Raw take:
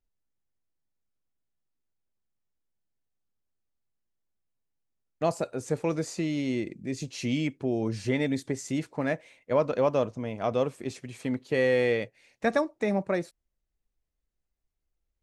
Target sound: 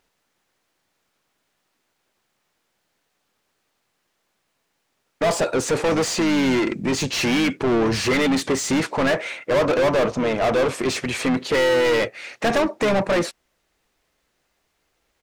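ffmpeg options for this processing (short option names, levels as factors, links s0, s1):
-filter_complex "[0:a]asplit=2[s0][s1];[s1]highpass=f=720:p=1,volume=44.7,asoftclip=type=tanh:threshold=0.251[s2];[s0][s2]amix=inputs=2:normalize=0,lowpass=f=3300:p=1,volume=0.501,asplit=2[s3][s4];[s4]asetrate=29433,aresample=44100,atempo=1.49831,volume=0.251[s5];[s3][s5]amix=inputs=2:normalize=0"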